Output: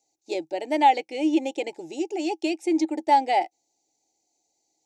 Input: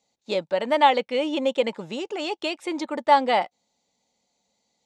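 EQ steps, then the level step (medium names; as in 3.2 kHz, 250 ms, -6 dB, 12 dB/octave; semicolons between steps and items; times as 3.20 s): FFT filter 150 Hz 0 dB, 210 Hz -16 dB, 320 Hz +13 dB, 520 Hz -8 dB, 810 Hz +3 dB, 1.1 kHz -29 dB, 2.4 kHz -6 dB, 3.4 kHz -12 dB, 5.8 kHz +4 dB, 9 kHz +1 dB; dynamic bell 1.8 kHz, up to +8 dB, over -39 dBFS, Q 0.88; bass shelf 270 Hz -10 dB; 0.0 dB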